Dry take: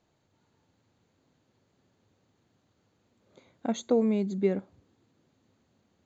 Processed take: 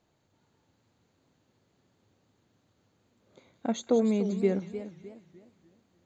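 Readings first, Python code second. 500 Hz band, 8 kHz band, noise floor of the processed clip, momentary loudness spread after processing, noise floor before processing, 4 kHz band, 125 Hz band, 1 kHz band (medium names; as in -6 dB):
+0.5 dB, no reading, -72 dBFS, 15 LU, -73 dBFS, +1.0 dB, +0.5 dB, +0.5 dB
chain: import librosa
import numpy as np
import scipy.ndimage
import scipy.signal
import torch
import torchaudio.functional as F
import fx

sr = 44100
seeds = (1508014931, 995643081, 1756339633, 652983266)

y = fx.echo_wet_highpass(x, sr, ms=183, feedback_pct=52, hz=2800.0, wet_db=-9.5)
y = fx.echo_warbled(y, sr, ms=300, feedback_pct=36, rate_hz=2.8, cents=182, wet_db=-12.0)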